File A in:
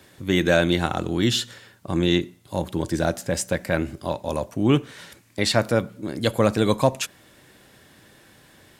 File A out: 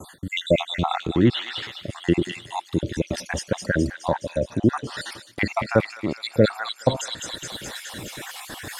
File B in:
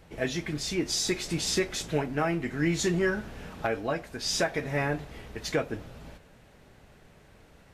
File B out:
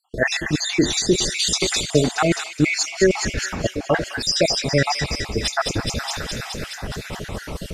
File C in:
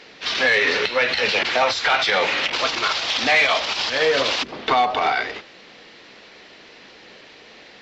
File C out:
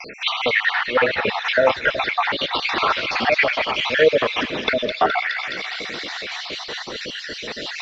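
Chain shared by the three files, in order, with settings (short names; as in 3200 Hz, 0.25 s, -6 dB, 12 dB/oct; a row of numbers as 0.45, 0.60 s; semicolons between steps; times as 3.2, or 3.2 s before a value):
random spectral dropouts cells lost 63%; treble ducked by the level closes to 1700 Hz, closed at -22 dBFS; on a send: thin delay 0.21 s, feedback 64%, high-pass 2700 Hz, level -4 dB; on the sum: reverse; upward compressor, threshold -26 dBFS; reverse; gate with hold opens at -37 dBFS; normalise peaks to -3 dBFS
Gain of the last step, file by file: +4.5, +12.0, +7.5 dB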